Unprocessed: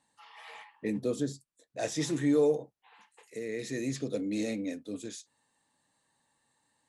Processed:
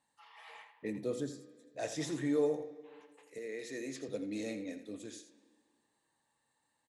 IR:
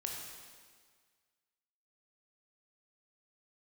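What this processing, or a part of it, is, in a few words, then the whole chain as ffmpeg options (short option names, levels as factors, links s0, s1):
filtered reverb send: -filter_complex "[0:a]asplit=2[s0][s1];[s1]highpass=f=190:w=0.5412,highpass=f=190:w=1.3066,lowpass=3600[s2];[1:a]atrim=start_sample=2205[s3];[s2][s3]afir=irnorm=-1:irlink=0,volume=0.335[s4];[s0][s4]amix=inputs=2:normalize=0,asettb=1/sr,asplit=3[s5][s6][s7];[s5]atrim=end=3.384[s8];[s6]atrim=start=3.38:end=4.09,asetpts=PTS-STARTPTS,afade=t=in:d=0.004:c=qsin,afade=t=out:st=0.706:d=0.004:c=qsin,highpass=260[s9];[s7]atrim=start=4.086[s10];[s8][s9]acrossfade=d=0.004:c1=hsin:c2=qsin[s11];[s11][s10]acrossfade=d=0.004:c1=qsin:c2=hsin,aecho=1:1:83:0.266,volume=0.473"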